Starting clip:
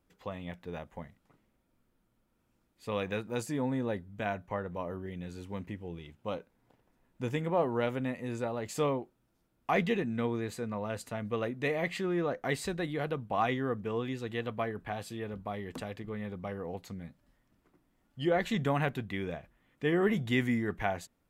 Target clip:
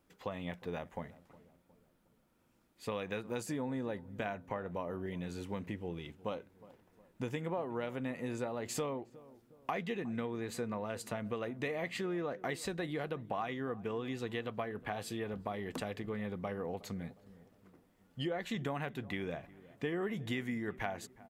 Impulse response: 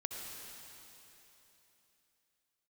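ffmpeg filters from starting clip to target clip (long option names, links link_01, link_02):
-filter_complex "[0:a]lowshelf=frequency=91:gain=-9,acompressor=threshold=-38dB:ratio=6,asplit=2[link_01][link_02];[link_02]adelay=362,lowpass=frequency=990:poles=1,volume=-18.5dB,asplit=2[link_03][link_04];[link_04]adelay=362,lowpass=frequency=990:poles=1,volume=0.51,asplit=2[link_05][link_06];[link_06]adelay=362,lowpass=frequency=990:poles=1,volume=0.51,asplit=2[link_07][link_08];[link_08]adelay=362,lowpass=frequency=990:poles=1,volume=0.51[link_09];[link_03][link_05][link_07][link_09]amix=inputs=4:normalize=0[link_10];[link_01][link_10]amix=inputs=2:normalize=0,volume=3.5dB"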